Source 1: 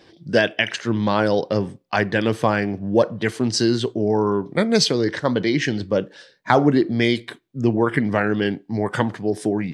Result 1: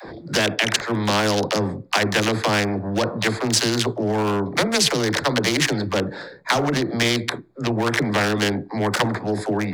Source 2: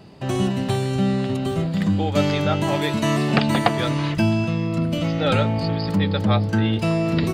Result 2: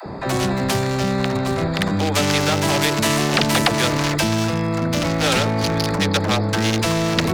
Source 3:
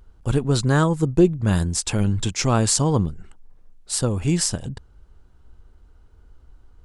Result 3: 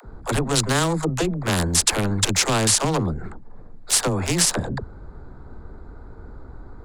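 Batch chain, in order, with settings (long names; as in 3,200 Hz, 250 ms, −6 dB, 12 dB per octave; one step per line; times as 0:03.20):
adaptive Wiener filter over 15 samples
all-pass dispersion lows, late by 62 ms, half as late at 320 Hz
dynamic equaliser 1,300 Hz, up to −3 dB, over −37 dBFS, Q 0.92
boost into a limiter +12 dB
every bin compressed towards the loudest bin 2 to 1
level −1 dB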